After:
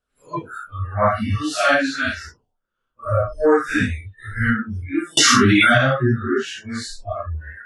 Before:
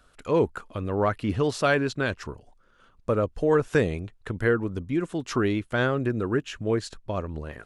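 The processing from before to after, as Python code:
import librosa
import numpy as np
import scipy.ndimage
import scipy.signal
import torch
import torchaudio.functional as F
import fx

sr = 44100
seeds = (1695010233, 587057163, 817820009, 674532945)

y = fx.phase_scramble(x, sr, seeds[0], window_ms=200)
y = fx.noise_reduce_blind(y, sr, reduce_db=28)
y = fx.env_flatten(y, sr, amount_pct=100, at=(5.17, 5.78))
y = F.gain(torch.from_numpy(y), 8.5).numpy()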